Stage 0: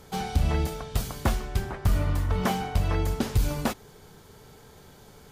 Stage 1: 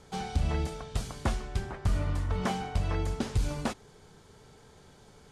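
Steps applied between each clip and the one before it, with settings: LPF 9800 Hz 24 dB/oct; gain -4.5 dB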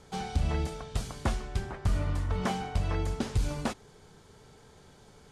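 nothing audible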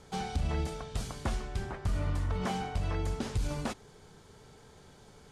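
limiter -23.5 dBFS, peak gain reduction 4.5 dB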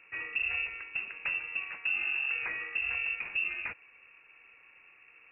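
inverted band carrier 2700 Hz; gain -3 dB

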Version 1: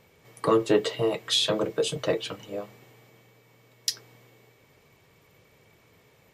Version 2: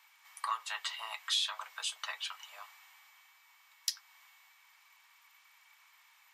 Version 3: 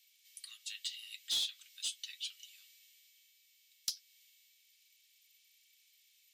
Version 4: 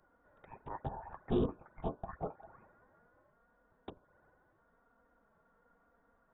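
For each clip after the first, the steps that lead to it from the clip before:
steep high-pass 880 Hz 48 dB/oct; compressor 1.5:1, threshold -41 dBFS, peak gain reduction 7.5 dB
inverse Chebyshev high-pass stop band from 920 Hz, stop band 60 dB; in parallel at -3.5 dB: wavefolder -30 dBFS; on the sum: gain -4 dB
envelope flanger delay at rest 5.1 ms, full sweep at -40.5 dBFS; inverted band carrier 3700 Hz; gain +6 dB

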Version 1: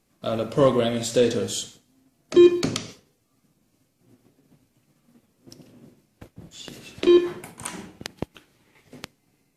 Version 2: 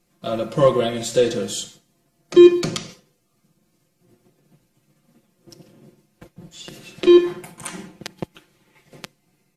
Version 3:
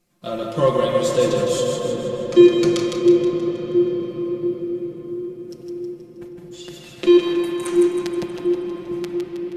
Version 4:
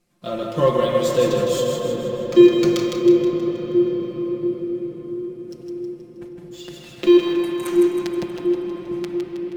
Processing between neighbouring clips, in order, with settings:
comb 5.7 ms, depth 88%; gain -1 dB
split-band echo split 420 Hz, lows 0.687 s, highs 0.159 s, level -5 dB; on a send at -2 dB: reverb RT60 7.1 s, pre-delay 4 ms; on the sum: gain -2.5 dB
decimation joined by straight lines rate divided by 2×

